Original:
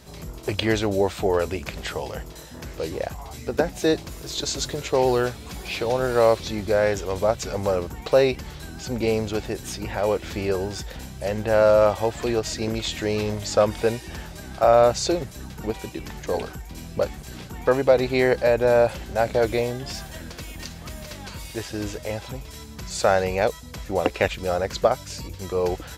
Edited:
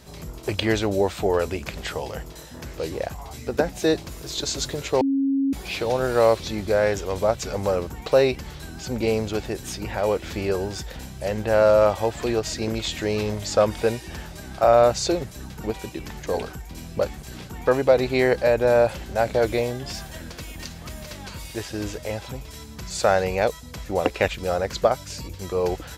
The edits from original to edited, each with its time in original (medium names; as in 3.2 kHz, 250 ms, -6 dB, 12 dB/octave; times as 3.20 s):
5.01–5.53 s: bleep 273 Hz -18.5 dBFS